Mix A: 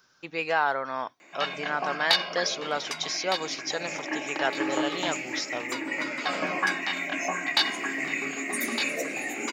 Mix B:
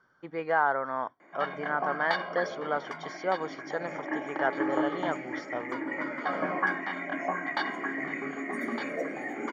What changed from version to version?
master: add polynomial smoothing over 41 samples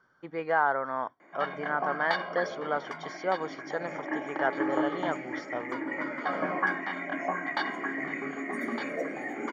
none

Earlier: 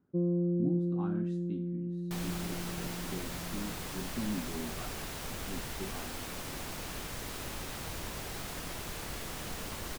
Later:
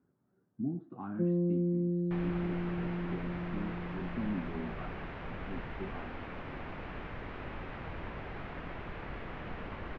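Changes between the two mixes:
first sound: entry +1.05 s; master: add LPF 2400 Hz 24 dB/oct

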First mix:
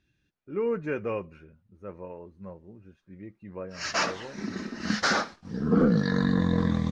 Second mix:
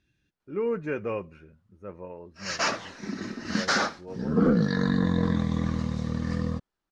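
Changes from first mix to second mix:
background: entry -1.35 s; master: add high shelf 9900 Hz +4 dB

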